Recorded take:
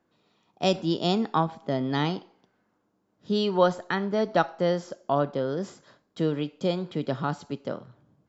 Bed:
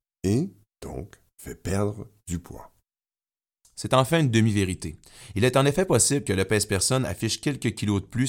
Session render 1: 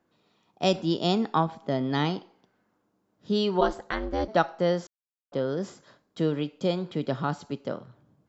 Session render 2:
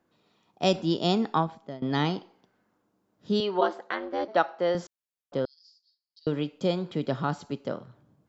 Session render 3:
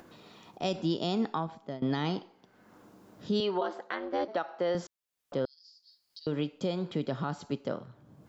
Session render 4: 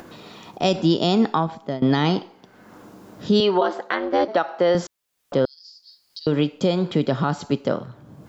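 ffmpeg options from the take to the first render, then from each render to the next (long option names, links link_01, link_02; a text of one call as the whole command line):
ffmpeg -i in.wav -filter_complex "[0:a]asplit=3[link_01][link_02][link_03];[link_01]afade=type=out:start_time=3.6:duration=0.02[link_04];[link_02]aeval=exprs='val(0)*sin(2*PI*150*n/s)':channel_layout=same,afade=type=in:start_time=3.6:duration=0.02,afade=type=out:start_time=4.27:duration=0.02[link_05];[link_03]afade=type=in:start_time=4.27:duration=0.02[link_06];[link_04][link_05][link_06]amix=inputs=3:normalize=0,asplit=3[link_07][link_08][link_09];[link_07]atrim=end=4.87,asetpts=PTS-STARTPTS,afade=type=out:start_time=4.866:duration=0.004:curve=hsin[link_10];[link_08]atrim=start=4.87:end=5.32,asetpts=PTS-STARTPTS,volume=0[link_11];[link_09]atrim=start=5.32,asetpts=PTS-STARTPTS,afade=type=in:duration=0.004:curve=hsin[link_12];[link_10][link_11][link_12]concat=n=3:v=0:a=1" out.wav
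ffmpeg -i in.wav -filter_complex "[0:a]asettb=1/sr,asplit=3[link_01][link_02][link_03];[link_01]atrim=end=3.404[link_04];[link_02]atrim=start=3.4:end=4.75,asetpts=PTS-STARTPTS,afade=type=in:duration=0.004:curve=qsin,afade=type=out:start_time=1.346:duration=0.004:curve=qsin,highpass=330,lowpass=4100[link_05];[link_03]atrim=start=4.746[link_06];[link_04][link_05]acrossfade=duration=0.004:curve1=hsin:curve2=qsin[link_07];[link_07][link_06]acrossfade=duration=0.004:curve1=qsin:curve2=hsin,asettb=1/sr,asplit=3[link_08][link_09][link_10];[link_08]atrim=end=5.454[link_11];[link_09]atrim=start=5.45:end=6.27,asetpts=PTS-STARTPTS,afade=type=in:duration=0.004:curve=qsin,afade=type=out:start_time=0.816:duration=0.004:curve=qsin,asuperpass=centerf=4700:order=4:qfactor=5.9[link_12];[link_10]atrim=start=6.266[link_13];[link_11][link_12]acrossfade=duration=0.004:curve1=hsin:curve2=qsin[link_14];[link_14][link_13]acrossfade=duration=0.004:curve1=qsin:curve2=hsin,asplit=2[link_15][link_16];[link_15]atrim=end=1.82,asetpts=PTS-STARTPTS,afade=type=out:start_time=1.32:duration=0.5:silence=0.1[link_17];[link_16]atrim=start=1.82,asetpts=PTS-STARTPTS,afade=type=in:duration=0.004:curve=hsin:silence=0.1[link_18];[link_17][link_18]concat=n=2:v=0:a=1" out.wav
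ffmpeg -i in.wav -af "alimiter=limit=-20.5dB:level=0:latency=1:release=152,acompressor=mode=upward:threshold=-40dB:ratio=2.5" out.wav
ffmpeg -i in.wav -af "volume=11.5dB" out.wav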